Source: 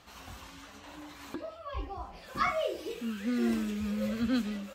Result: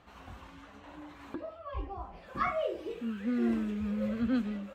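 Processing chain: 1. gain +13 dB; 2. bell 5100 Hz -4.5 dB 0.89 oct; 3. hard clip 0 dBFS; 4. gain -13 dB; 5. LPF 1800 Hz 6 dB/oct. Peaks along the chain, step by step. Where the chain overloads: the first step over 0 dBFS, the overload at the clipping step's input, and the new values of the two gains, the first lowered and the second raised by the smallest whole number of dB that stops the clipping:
-3.5, -3.5, -3.5, -16.5, -18.0 dBFS; no overload

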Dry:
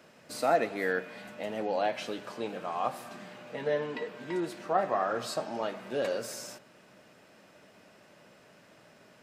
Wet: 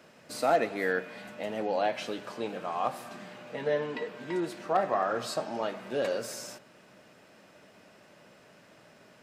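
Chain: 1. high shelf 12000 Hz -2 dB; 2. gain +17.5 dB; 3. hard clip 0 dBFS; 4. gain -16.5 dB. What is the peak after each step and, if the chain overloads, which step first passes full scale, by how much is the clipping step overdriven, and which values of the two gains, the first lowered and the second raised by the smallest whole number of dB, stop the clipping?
-14.0, +3.5, 0.0, -16.5 dBFS; step 2, 3.5 dB; step 2 +13.5 dB, step 4 -12.5 dB

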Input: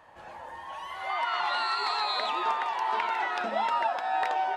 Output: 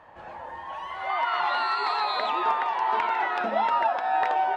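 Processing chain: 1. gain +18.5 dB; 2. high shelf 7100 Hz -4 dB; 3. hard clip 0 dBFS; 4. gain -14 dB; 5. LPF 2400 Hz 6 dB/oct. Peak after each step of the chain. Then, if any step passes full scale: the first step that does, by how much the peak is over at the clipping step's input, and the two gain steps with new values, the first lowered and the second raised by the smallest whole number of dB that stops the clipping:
+5.0, +4.5, 0.0, -14.0, -14.0 dBFS; step 1, 4.5 dB; step 1 +13.5 dB, step 4 -9 dB

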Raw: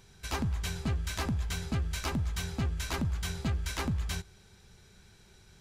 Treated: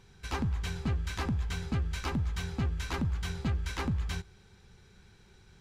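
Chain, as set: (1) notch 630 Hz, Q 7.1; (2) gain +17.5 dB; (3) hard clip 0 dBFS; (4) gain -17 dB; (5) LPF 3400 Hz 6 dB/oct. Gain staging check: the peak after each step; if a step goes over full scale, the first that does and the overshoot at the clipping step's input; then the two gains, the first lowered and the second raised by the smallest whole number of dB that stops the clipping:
-23.0, -5.5, -5.5, -22.5, -22.5 dBFS; no overload

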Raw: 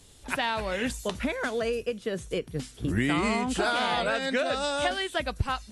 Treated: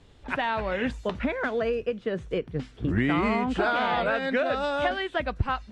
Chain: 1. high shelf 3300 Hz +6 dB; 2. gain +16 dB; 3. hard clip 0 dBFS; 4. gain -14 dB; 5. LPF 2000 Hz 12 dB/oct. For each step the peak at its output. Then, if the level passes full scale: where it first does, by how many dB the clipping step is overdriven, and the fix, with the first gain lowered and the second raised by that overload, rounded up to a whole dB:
-11.5, +4.5, 0.0, -14.0, -14.0 dBFS; step 2, 4.5 dB; step 2 +11 dB, step 4 -9 dB

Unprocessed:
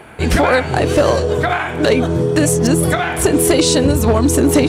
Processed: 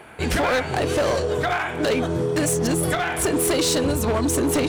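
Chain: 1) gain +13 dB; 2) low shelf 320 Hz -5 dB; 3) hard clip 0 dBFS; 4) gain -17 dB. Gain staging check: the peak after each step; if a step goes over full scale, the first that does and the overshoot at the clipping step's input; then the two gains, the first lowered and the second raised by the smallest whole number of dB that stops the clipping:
+7.5, +9.0, 0.0, -17.0 dBFS; step 1, 9.0 dB; step 1 +4 dB, step 4 -8 dB

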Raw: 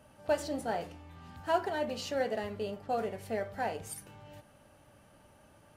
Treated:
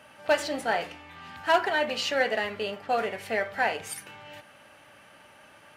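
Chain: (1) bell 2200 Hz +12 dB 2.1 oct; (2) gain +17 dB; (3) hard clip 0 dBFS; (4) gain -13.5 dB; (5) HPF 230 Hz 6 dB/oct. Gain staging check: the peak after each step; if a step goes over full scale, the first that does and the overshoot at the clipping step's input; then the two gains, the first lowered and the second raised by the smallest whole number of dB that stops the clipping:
-12.0, +5.0, 0.0, -13.5, -12.0 dBFS; step 2, 5.0 dB; step 2 +12 dB, step 4 -8.5 dB

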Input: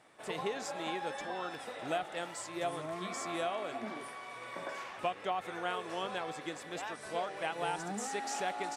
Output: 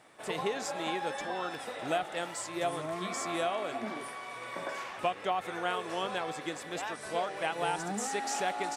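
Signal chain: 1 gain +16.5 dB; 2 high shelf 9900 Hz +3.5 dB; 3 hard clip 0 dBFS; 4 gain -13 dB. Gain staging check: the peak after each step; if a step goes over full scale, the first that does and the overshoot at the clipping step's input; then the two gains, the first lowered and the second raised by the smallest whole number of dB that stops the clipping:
-2.5, -2.5, -2.5, -15.5 dBFS; no overload

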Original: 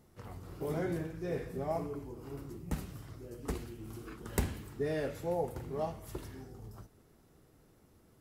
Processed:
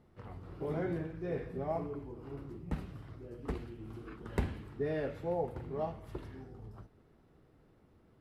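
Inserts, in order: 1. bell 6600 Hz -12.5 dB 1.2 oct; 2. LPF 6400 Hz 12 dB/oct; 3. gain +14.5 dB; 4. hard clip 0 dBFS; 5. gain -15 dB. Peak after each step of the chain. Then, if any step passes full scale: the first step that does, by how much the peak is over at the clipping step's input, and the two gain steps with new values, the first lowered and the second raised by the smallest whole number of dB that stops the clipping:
-15.0, -18.0, -3.5, -3.5, -18.5 dBFS; no overload

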